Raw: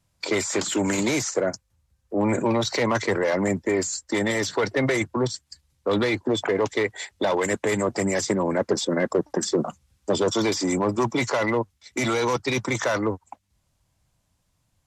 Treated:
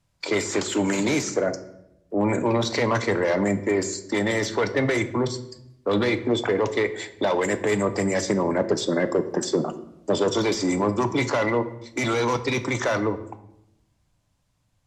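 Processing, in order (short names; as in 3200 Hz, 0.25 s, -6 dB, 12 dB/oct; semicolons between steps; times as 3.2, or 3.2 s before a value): high shelf 8500 Hz -8 dB; reverb RT60 0.80 s, pre-delay 7 ms, DRR 10 dB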